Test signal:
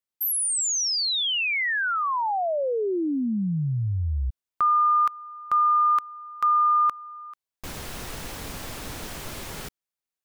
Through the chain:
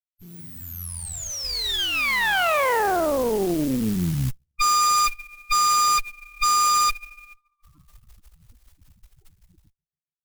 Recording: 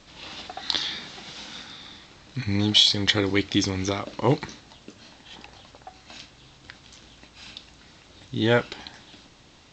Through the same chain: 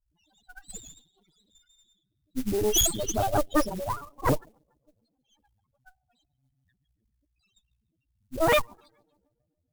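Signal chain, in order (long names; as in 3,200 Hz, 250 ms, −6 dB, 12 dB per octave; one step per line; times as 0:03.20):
dynamic equaliser 600 Hz, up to +4 dB, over −37 dBFS, Q 0.9
spectral peaks only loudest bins 1
on a send: tape delay 144 ms, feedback 63%, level −22.5 dB, low-pass 4,200 Hz
on the sum: noise that follows the level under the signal 22 dB
harmonic generator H 4 −10 dB, 7 −15 dB, 8 −7 dB, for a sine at −17 dBFS
level +1.5 dB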